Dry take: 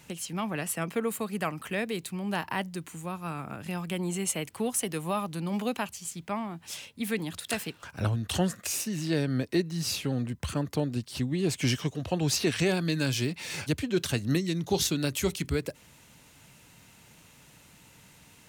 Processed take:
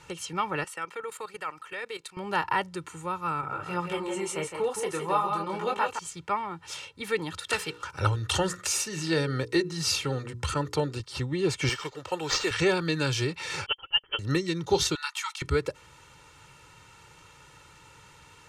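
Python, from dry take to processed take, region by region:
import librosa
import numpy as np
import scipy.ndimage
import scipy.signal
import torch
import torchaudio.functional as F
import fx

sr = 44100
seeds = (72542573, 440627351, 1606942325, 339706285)

y = fx.chain(x, sr, fx.highpass(hz=730.0, slope=6),
    fx.level_steps(step_db=13), at=(0.64, 2.17))
y = fx.chain(y, sr, fx.peak_eq(hz=710.0, db=4.5, octaves=2.9),
    fx.echo_single(ms=164, db=-6.5),
    fx.detune_double(cents=13), at=(3.41, 5.99))
y = fx.chain(y, sr, fx.high_shelf(hz=3800.0, db=6.0),
    fx.hum_notches(base_hz=60, count=8), at=(7.53, 11.0))
y = fx.chain(y, sr, fx.highpass(hz=620.0, slope=6),
    fx.sample_hold(seeds[0], rate_hz=11000.0, jitter_pct=0), at=(11.69, 12.51))
y = fx.chain(y, sr, fx.freq_invert(carrier_hz=3200),
    fx.upward_expand(threshold_db=-39.0, expansion=2.5), at=(13.66, 14.19))
y = fx.chain(y, sr, fx.brickwall_highpass(low_hz=810.0),
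    fx.high_shelf(hz=5000.0, db=-4.0), at=(14.95, 15.42))
y = scipy.signal.sosfilt(scipy.signal.butter(2, 7500.0, 'lowpass', fs=sr, output='sos'), y)
y = fx.peak_eq(y, sr, hz=1200.0, db=9.5, octaves=0.65)
y = y + 0.74 * np.pad(y, (int(2.2 * sr / 1000.0), 0))[:len(y)]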